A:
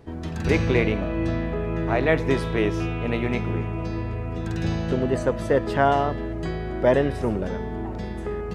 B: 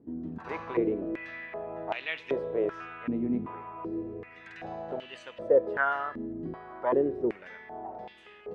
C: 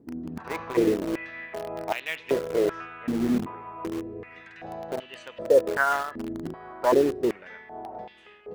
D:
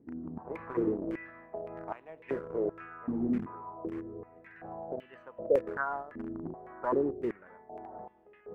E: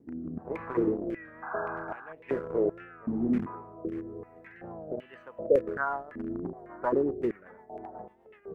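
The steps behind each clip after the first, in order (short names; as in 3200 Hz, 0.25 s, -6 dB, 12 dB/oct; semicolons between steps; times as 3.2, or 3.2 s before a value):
stepped band-pass 2.6 Hz 260–2900 Hz; gain +2 dB
in parallel at -9 dB: bit-crush 5-bit; on the sum: noise-modulated level, depth 55%; gain +4.5 dB
dynamic EQ 630 Hz, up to -6 dB, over -36 dBFS, Q 0.94; LFO low-pass saw down 1.8 Hz 560–2300 Hz; EQ curve 320 Hz 0 dB, 3700 Hz -9 dB, 12000 Hz +12 dB; gain -5.5 dB
painted sound noise, 1.42–2.13, 730–1700 Hz -42 dBFS; rotary speaker horn 1.1 Hz, later 8 Hz, at 5.61; record warp 33 1/3 rpm, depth 100 cents; gain +5 dB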